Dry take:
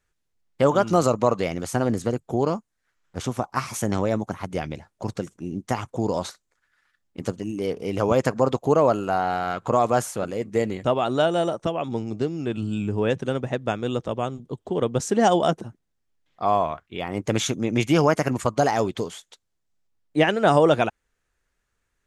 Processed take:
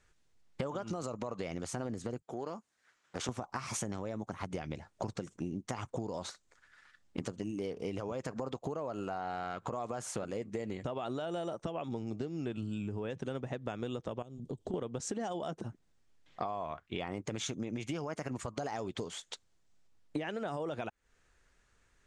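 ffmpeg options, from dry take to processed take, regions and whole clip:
-filter_complex "[0:a]asettb=1/sr,asplit=3[s0][s1][s2];[s0]atrim=end=2.224[s3];[s1]atrim=start=2.22:end=3.29,asetpts=PTS-STARTPTS,afade=t=in:d=0.004:c=qsin,afade=t=out:st=1.066:d=0.004:c=qsin,highpass=f=360:p=1,acompressor=threshold=0.00891:ratio=2.5:attack=3.2:release=140:knee=1:detection=peak[s4];[s2]atrim=start=3.286[s5];[s3][s4]acrossfade=d=0.004:c1=hsin:c2=qsin[s6];[s6][s5]acrossfade=d=0.004:c1=qsin:c2=hsin,asettb=1/sr,asplit=3[s7][s8][s9];[s7]atrim=end=14.224[s10];[s8]atrim=start=14.22:end=14.74,asetpts=PTS-STARTPTS,afade=t=in:d=0.004:c=qsin,afade=t=out:st=0.516:d=0.004:c=qsin,equalizer=f=1500:t=o:w=2:g=-14,acompressor=threshold=0.0112:ratio=12:attack=3.2:release=140:knee=1:detection=peak[s11];[s9]atrim=start=14.736[s12];[s10][s11]acrossfade=d=0.004:c1=hsin:c2=qsin[s13];[s13][s12]acrossfade=d=0.004:c1=qsin:c2=hsin,lowpass=f=9100:w=0.5412,lowpass=f=9100:w=1.3066,alimiter=limit=0.15:level=0:latency=1:release=93,acompressor=threshold=0.01:ratio=16,volume=2"

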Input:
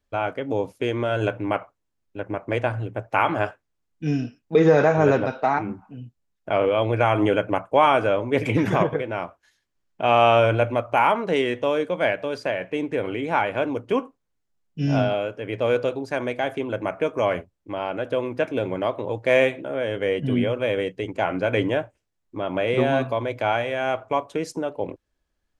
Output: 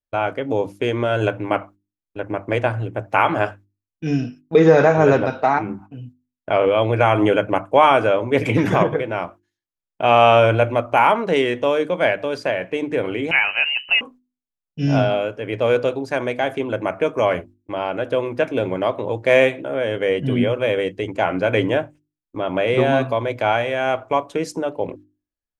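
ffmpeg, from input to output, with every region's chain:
-filter_complex "[0:a]asettb=1/sr,asplit=3[s0][s1][s2];[s0]atrim=end=13.314[s3];[s1]atrim=start=13.31:end=14.01,asetpts=PTS-STARTPTS,afade=t=in:d=0.004:c=qsin,afade=t=out:st=0.696:d=0.004:c=qsin,acompressor=mode=upward:threshold=0.0355:ratio=2.5:attack=3.2:release=140:knee=2.83:detection=peak,lowpass=f=2600:t=q:w=0.5098,lowpass=f=2600:t=q:w=0.6013,lowpass=f=2600:t=q:w=0.9,lowpass=f=2600:t=q:w=2.563,afreqshift=-3100[s4];[s2]atrim=start=14.006[s5];[s3][s4]acrossfade=d=0.004:c1=hsin:c2=qsin[s6];[s6][s5]acrossfade=d=0.004:c1=qsin:c2=hsin,agate=range=0.0891:threshold=0.00631:ratio=16:detection=peak,bandreject=f=50:t=h:w=6,bandreject=f=100:t=h:w=6,bandreject=f=150:t=h:w=6,bandreject=f=200:t=h:w=6,bandreject=f=250:t=h:w=6,bandreject=f=300:t=h:w=6,bandreject=f=350:t=h:w=6,volume=1.58"

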